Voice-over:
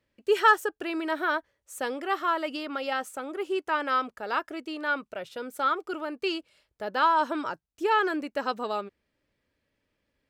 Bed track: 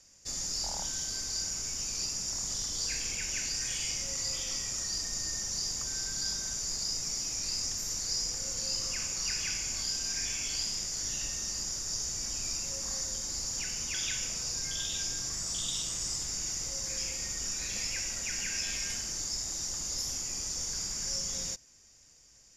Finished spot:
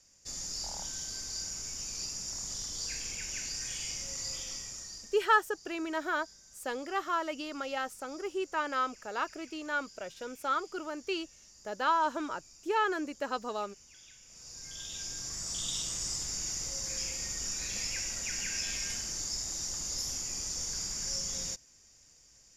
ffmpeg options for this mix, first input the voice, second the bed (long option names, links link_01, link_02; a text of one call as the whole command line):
ffmpeg -i stem1.wav -i stem2.wav -filter_complex "[0:a]adelay=4850,volume=-5dB[link_01];[1:a]volume=17dB,afade=type=out:start_time=4.36:duration=0.89:silence=0.125893,afade=type=in:start_time=14.25:duration=1.49:silence=0.0891251[link_02];[link_01][link_02]amix=inputs=2:normalize=0" out.wav